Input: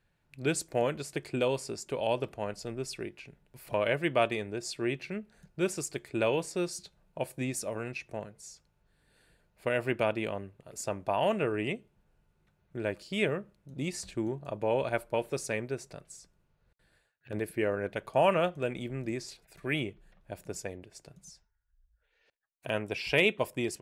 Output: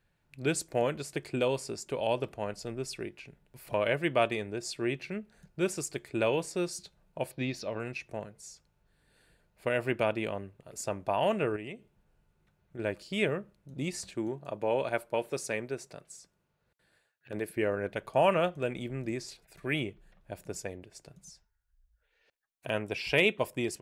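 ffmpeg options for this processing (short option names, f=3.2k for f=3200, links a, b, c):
-filter_complex "[0:a]asettb=1/sr,asplit=3[a][b][c];[a]atrim=end=7.314[d];[b]atrim=start=7.31:end=7.8,asetpts=PTS-STARTPTS,afade=t=in:d=0.004:c=qsin,afade=t=out:st=0.486:d=0.004:c=qsin,highshelf=f=6.1k:t=q:w=3:g=-13[e];[c]atrim=start=7.796[f];[d][e]acrossfade=d=0.004:c1=hsin:c2=qsin[g];[g][f]acrossfade=d=0.004:c1=qsin:c2=hsin,asettb=1/sr,asplit=3[h][i][j];[h]atrim=end=11.564[k];[i]atrim=start=11.56:end=12.79,asetpts=PTS-STARTPTS,afade=t=in:d=0.004:c=qsin,afade=t=out:st=1.226:d=0.004:c=qsin,acompressor=threshold=-44dB:ratio=2:attack=3.2:release=140:knee=1:detection=peak[l];[j]atrim=start=12.786[m];[k][l]acrossfade=d=0.004:c1=hsin:c2=qsin[n];[n][m]acrossfade=d=0.004:c1=qsin:c2=hsin,asettb=1/sr,asplit=3[o][p][q];[o]atrim=end=14.044[r];[p]atrim=start=14.04:end=17.57,asetpts=PTS-STARTPTS,afade=t=in:d=0.004:c=qsin,afade=t=out:st=3.526:d=0.004:c=qsin,highpass=f=170:p=1[s];[q]atrim=start=17.566[t];[r][s]acrossfade=d=0.004:c1=hsin:c2=qsin[u];[u][t]acrossfade=d=0.004:c1=qsin:c2=hsin"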